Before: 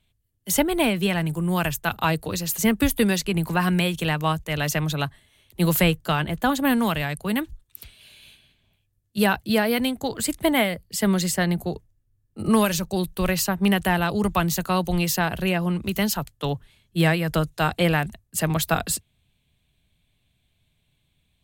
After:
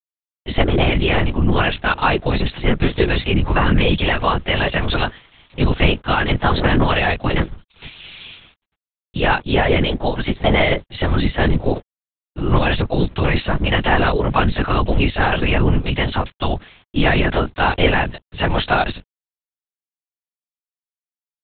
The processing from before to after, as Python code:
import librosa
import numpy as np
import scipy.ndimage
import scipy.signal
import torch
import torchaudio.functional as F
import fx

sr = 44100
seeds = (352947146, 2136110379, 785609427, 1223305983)

p1 = fx.low_shelf(x, sr, hz=310.0, db=-5.0)
p2 = fx.over_compress(p1, sr, threshold_db=-29.0, ratio=-0.5)
p3 = p1 + (p2 * 10.0 ** (-2.0 / 20.0))
p4 = fx.quant_dither(p3, sr, seeds[0], bits=8, dither='none')
p5 = fx.doubler(p4, sr, ms=17.0, db=-4)
p6 = fx.lpc_vocoder(p5, sr, seeds[1], excitation='whisper', order=8)
y = p6 * 10.0 ** (4.5 / 20.0)